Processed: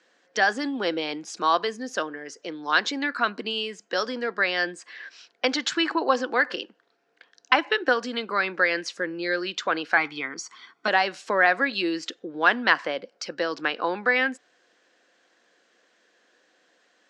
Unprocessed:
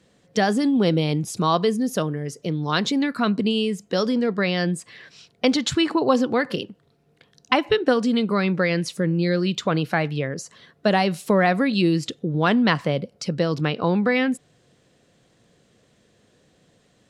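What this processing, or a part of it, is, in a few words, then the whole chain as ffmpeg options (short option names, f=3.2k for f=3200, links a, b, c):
phone speaker on a table: -filter_complex "[0:a]asettb=1/sr,asplit=3[a][b][c];[a]atrim=end=9.974[d];[b]atrim=start=9.97:end=10.88,asetpts=PTS-STARTPTS,afade=t=in:d=0.004:c=qsin,afade=t=out:st=0.906:d=0.004:c=qsin,aecho=1:1:0.9:0.93,atrim=end_sample=40131[e];[c]atrim=start=10.876[f];[d][e]acrossfade=d=0.004:c1=hsin:c2=qsin[g];[g][f]acrossfade=d=0.004:c1=qsin:c2=hsin,highpass=f=350:w=0.5412,highpass=f=350:w=1.3066,equalizer=f=420:t=q:w=4:g=-8,equalizer=f=600:t=q:w=4:g=-4,equalizer=f=1.6k:t=q:w=4:g=8,equalizer=f=3.7k:t=q:w=4:g=-3,lowpass=f=6.6k:w=0.5412,lowpass=f=6.6k:w=1.3066"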